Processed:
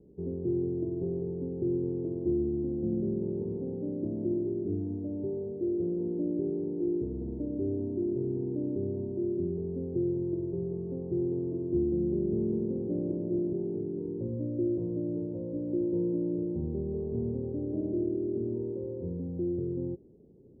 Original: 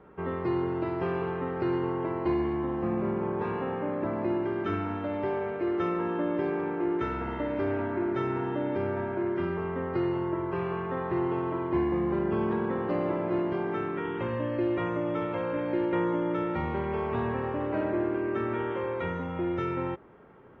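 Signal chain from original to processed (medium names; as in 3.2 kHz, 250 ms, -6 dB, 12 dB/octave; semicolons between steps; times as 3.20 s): inverse Chebyshev low-pass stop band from 1.4 kHz, stop band 60 dB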